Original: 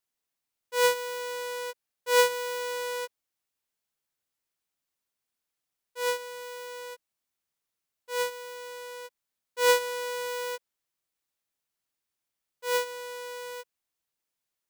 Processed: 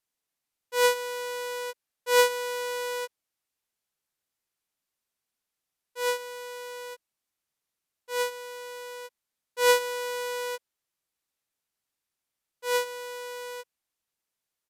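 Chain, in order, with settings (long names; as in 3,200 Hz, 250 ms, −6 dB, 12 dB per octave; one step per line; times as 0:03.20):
downsampling to 32,000 Hz
level +1 dB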